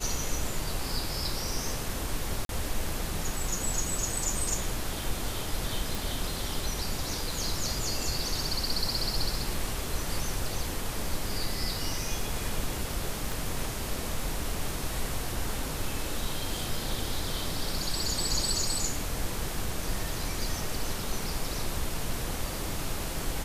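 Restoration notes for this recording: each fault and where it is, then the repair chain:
2.45–2.49 gap 42 ms
5.95 pop
13.32 pop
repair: de-click; interpolate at 2.45, 42 ms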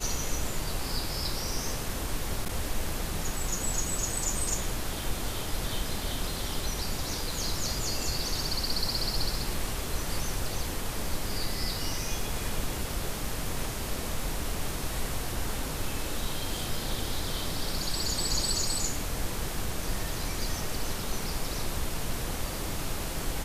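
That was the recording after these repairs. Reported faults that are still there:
13.32 pop

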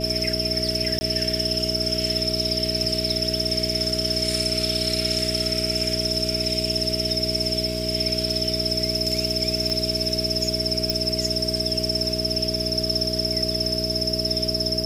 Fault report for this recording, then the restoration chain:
hum 60 Hz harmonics 7 -29 dBFS
tone 640 Hz -30 dBFS
0.99–1.01 gap 20 ms
9.7 pop -13 dBFS
10.9 pop -9 dBFS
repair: de-click; notch 640 Hz, Q 30; de-hum 60 Hz, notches 7; interpolate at 0.99, 20 ms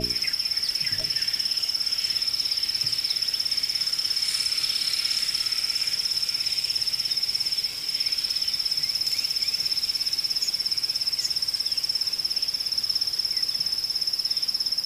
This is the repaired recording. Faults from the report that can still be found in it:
none

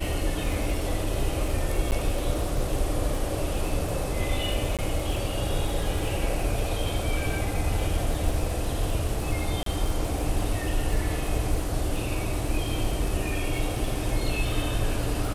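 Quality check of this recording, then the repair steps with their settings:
crackle 40/s -31 dBFS
1.91–1.92 gap 8.7 ms
4.77–4.79 gap 17 ms
9.63–9.66 gap 33 ms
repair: de-click; interpolate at 1.91, 8.7 ms; interpolate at 4.77, 17 ms; interpolate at 9.63, 33 ms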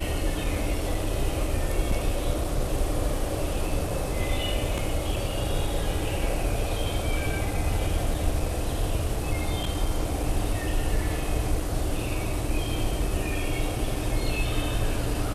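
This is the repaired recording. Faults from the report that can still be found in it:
none

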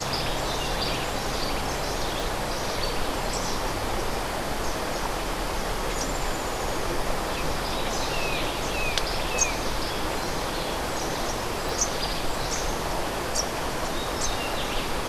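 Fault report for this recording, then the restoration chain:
2.2 pop
11.69 pop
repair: de-click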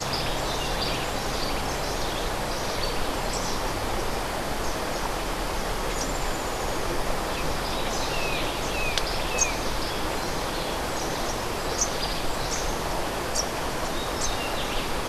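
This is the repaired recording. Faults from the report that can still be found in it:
2.2 pop

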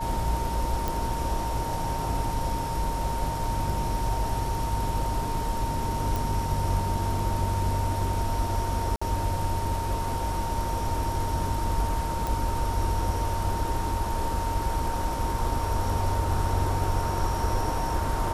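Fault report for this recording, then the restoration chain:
tone 920 Hz -31 dBFS
0.88 pop
6.16 pop
8.96–9.02 gap 55 ms
12.27 pop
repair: de-click; notch 920 Hz, Q 30; interpolate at 8.96, 55 ms

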